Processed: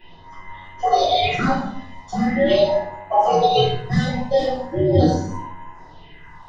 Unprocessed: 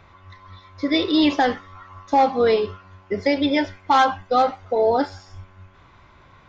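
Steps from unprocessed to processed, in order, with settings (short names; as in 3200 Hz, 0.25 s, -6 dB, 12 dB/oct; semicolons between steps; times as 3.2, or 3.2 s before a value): band inversion scrambler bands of 1000 Hz; 2.68–3.28 bell 810 Hz +14.5 dB 0.24 oct; limiter -14 dBFS, peak gain reduction 8.5 dB; phaser stages 4, 0.41 Hz, lowest notch 250–4900 Hz; shoebox room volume 120 m³, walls mixed, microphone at 3 m; gain -2.5 dB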